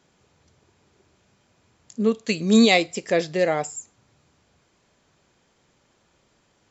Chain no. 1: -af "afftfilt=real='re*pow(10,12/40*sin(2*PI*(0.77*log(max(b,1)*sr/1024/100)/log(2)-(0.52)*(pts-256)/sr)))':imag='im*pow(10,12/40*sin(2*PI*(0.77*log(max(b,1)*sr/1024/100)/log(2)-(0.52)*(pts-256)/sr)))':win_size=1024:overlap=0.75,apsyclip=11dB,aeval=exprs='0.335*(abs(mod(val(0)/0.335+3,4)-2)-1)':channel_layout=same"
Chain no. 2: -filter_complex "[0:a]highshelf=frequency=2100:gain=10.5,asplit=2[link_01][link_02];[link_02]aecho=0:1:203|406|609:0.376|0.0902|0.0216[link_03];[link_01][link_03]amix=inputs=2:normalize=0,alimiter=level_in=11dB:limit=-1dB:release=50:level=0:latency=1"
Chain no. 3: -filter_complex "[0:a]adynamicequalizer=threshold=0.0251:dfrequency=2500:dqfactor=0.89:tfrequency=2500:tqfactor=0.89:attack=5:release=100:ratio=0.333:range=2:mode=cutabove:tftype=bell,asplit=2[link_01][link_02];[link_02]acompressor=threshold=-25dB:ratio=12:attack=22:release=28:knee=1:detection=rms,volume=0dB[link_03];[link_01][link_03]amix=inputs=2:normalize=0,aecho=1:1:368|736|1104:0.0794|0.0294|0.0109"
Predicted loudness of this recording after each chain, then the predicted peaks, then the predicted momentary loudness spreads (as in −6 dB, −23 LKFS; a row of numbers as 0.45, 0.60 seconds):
−16.5, −12.5, −18.0 LKFS; −9.5, −1.0, −3.5 dBFS; 11, 14, 14 LU